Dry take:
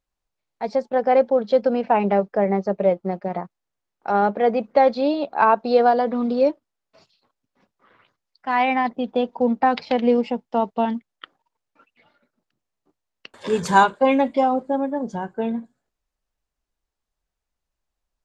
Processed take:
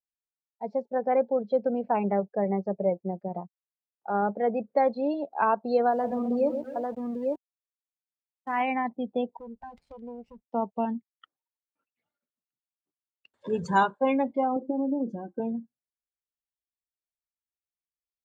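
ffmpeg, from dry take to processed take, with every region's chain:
-filter_complex "[0:a]asettb=1/sr,asplit=3[a][b][c];[a]atrim=end=5.914[d];[b]atrim=start=5.91:end=8.62,asetpts=PTS-STARTPTS,afade=t=in:d=0.004:c=qsin,afade=t=out:st=2.706:d=0.004:c=qsin,aecho=1:1:81|126|257|324|847:0.126|0.398|0.188|0.158|0.668,atrim=end_sample=119511,aeval=exprs='val(0)*gte(abs(val(0)),0.0335)':c=same[e];[c]atrim=start=8.616[f];[d][e]acrossfade=d=0.004:c1=hsin:c2=qsin[g];[g][f]acrossfade=d=0.004:c1=qsin:c2=hsin,asettb=1/sr,asplit=3[h][i][j];[h]atrim=end=9.374[k];[i]atrim=start=9.37:end=10.48,asetpts=PTS-STARTPTS,afade=t=in:d=0.004:c=qsin,afade=t=out:st=1.106:d=0.004:c=qsin,aeval=exprs='max(val(0),0)':c=same,acompressor=threshold=-35dB:ratio=2:attack=3.2:release=140:knee=1:detection=peak[l];[j]atrim=start=10.476[m];[k][l]acrossfade=d=0.004:c1=hsin:c2=qsin[n];[n][m]acrossfade=d=0.004:c1=qsin:c2=hsin,asettb=1/sr,asplit=3[o][p][q];[o]atrim=end=14.564[r];[p]atrim=start=14.56:end=15.4,asetpts=PTS-STARTPTS,afade=t=in:d=0.004:c=qsin,afade=t=out:st=0.836:d=0.004:c=qsin,acompressor=threshold=-27dB:ratio=16:attack=3.2:release=140:knee=1:detection=peak,equalizer=f=350:w=1.6:g=12.5,aecho=1:1:3.8:0.72,atrim=end_sample=37044[s];[q]atrim=start=15.396[t];[r][s]acrossfade=d=0.004:c1=hsin:c2=qsin[u];[u][t]acrossfade=d=0.004:c1=qsin:c2=hsin,afftdn=nr=21:nf=-28,highpass=60,lowshelf=f=140:g=8,volume=-8dB"

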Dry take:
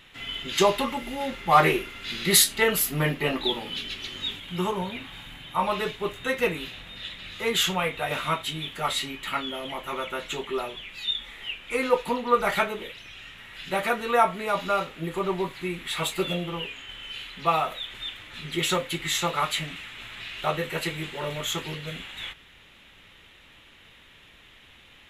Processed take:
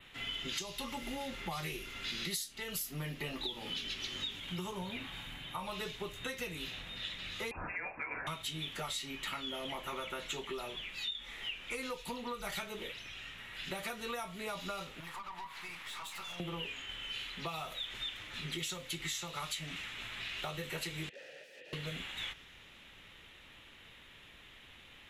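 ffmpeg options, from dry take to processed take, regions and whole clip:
-filter_complex "[0:a]asettb=1/sr,asplit=3[a][b][c];[a]atrim=end=7.514[d];[b]atrim=start=7.51:end=8.27,asetpts=PTS-STARTPTS,afade=t=in:d=0.004:c=qsin,afade=t=out:st=0.756:d=0.004:c=qsin,highpass=530,lowpass=f=2.5k:t=q:w=0.5098,lowpass=f=2.5k:t=q:w=0.6013,lowpass=f=2.5k:t=q:w=0.9,lowpass=f=2.5k:t=q:w=2.563,afreqshift=-2900[e];[c]atrim=start=8.266[f];[d][e]acrossfade=d=0.004:c1=hsin:c2=qsin[g];[g][f]acrossfade=d=0.004:c1=qsin:c2=hsin,asettb=1/sr,asplit=3[h][i][j];[h]atrim=end=15.004[k];[i]atrim=start=15:end=16.4,asetpts=PTS-STARTPTS,afade=t=in:d=0.004:c=qsin,afade=t=out:st=1.396:d=0.004:c=qsin,lowshelf=f=640:t=q:w=3:g=-13.5,acompressor=threshold=-33dB:ratio=16:attack=3.2:release=140:knee=1:detection=peak,aeval=exprs='(tanh(63.1*val(0)+0.5)-tanh(0.5))/63.1':c=same[l];[j]atrim=start=16.396[m];[k][l]acrossfade=d=0.004:c1=hsin:c2=qsin[n];[n][m]acrossfade=d=0.004:c1=qsin:c2=hsin,asettb=1/sr,asplit=3[o][p][q];[o]atrim=end=21.094[r];[p]atrim=start=21.09:end=21.73,asetpts=PTS-STARTPTS,afade=t=in:d=0.004:c=qsin,afade=t=out:st=0.636:d=0.004:c=qsin,equalizer=f=1.4k:w=2.3:g=-4,aeval=exprs='(mod(33.5*val(0)+1,2)-1)/33.5':c=same,asplit=3[s][t][u];[s]bandpass=f=530:t=q:w=8,volume=0dB[v];[t]bandpass=f=1.84k:t=q:w=8,volume=-6dB[w];[u]bandpass=f=2.48k:t=q:w=8,volume=-9dB[x];[v][w][x]amix=inputs=3:normalize=0[y];[q]atrim=start=21.726[z];[r][y]acrossfade=d=0.004:c1=hsin:c2=qsin[aa];[aa][z]acrossfade=d=0.004:c1=qsin:c2=hsin,acrossover=split=150|3000[ab][ac][ad];[ac]acompressor=threshold=-33dB:ratio=6[ae];[ab][ae][ad]amix=inputs=3:normalize=0,adynamicequalizer=threshold=0.00355:dfrequency=5700:dqfactor=2:tfrequency=5700:tqfactor=2:attack=5:release=100:ratio=0.375:range=3:mode=boostabove:tftype=bell,acompressor=threshold=-32dB:ratio=16,volume=-3.5dB"

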